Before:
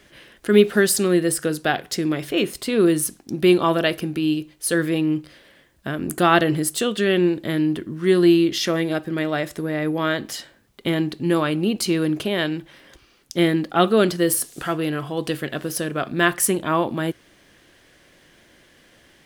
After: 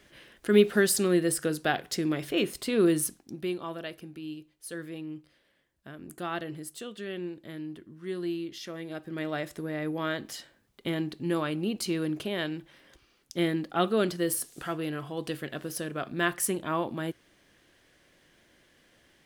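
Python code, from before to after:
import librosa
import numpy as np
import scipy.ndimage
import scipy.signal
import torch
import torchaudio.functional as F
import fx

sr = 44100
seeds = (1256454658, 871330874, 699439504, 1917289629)

y = fx.gain(x, sr, db=fx.line((3.05, -6.0), (3.54, -18.0), (8.74, -18.0), (9.27, -9.0)))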